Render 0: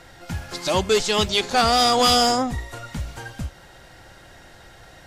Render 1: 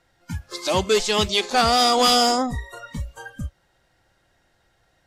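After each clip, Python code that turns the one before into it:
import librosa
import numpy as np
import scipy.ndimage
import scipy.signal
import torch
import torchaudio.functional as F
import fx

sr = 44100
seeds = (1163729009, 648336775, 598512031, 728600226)

y = fx.noise_reduce_blind(x, sr, reduce_db=18)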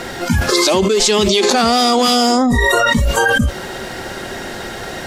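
y = fx.low_shelf(x, sr, hz=180.0, db=-8.5)
y = fx.small_body(y, sr, hz=(230.0, 380.0), ring_ms=50, db=11)
y = fx.env_flatten(y, sr, amount_pct=100)
y = y * librosa.db_to_amplitude(-2.5)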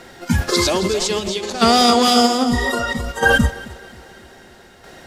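y = fx.tremolo_shape(x, sr, shape='saw_down', hz=0.62, depth_pct=55)
y = fx.echo_feedback(y, sr, ms=267, feedback_pct=54, wet_db=-9.0)
y = fx.upward_expand(y, sr, threshold_db=-23.0, expansion=2.5)
y = y * librosa.db_to_amplitude(2.0)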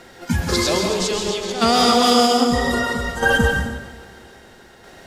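y = fx.rev_plate(x, sr, seeds[0], rt60_s=0.87, hf_ratio=0.8, predelay_ms=115, drr_db=2.5)
y = y * librosa.db_to_amplitude(-3.0)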